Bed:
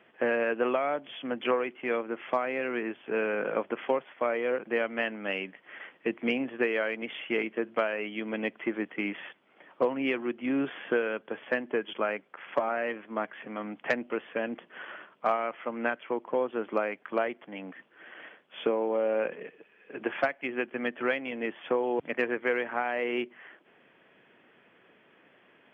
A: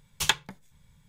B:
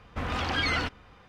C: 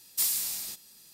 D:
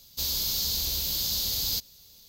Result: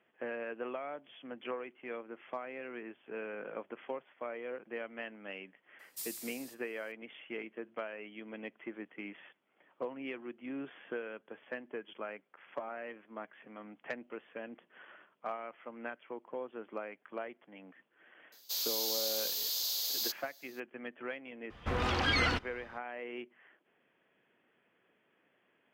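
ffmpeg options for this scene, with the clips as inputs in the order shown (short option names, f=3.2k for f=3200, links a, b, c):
-filter_complex "[0:a]volume=-12.5dB[a];[4:a]highpass=f=490:w=0.5412,highpass=f=490:w=1.3066[b];[3:a]atrim=end=1.13,asetpts=PTS-STARTPTS,volume=-15.5dB,afade=t=in:d=0.004:c=hsin,afade=t=out:st=1.126:d=0.004:c=hsin,adelay=5790[c];[b]atrim=end=2.28,asetpts=PTS-STARTPTS,volume=-6dB,afade=t=in:d=0.004:c=hsin,afade=t=out:st=2.276:d=0.004:c=hsin,adelay=18320[d];[2:a]atrim=end=1.28,asetpts=PTS-STARTPTS,volume=-2dB,afade=t=in:d=0.004:c=hsin,afade=t=out:st=1.276:d=0.004:c=hsin,adelay=21500[e];[a][c][d][e]amix=inputs=4:normalize=0"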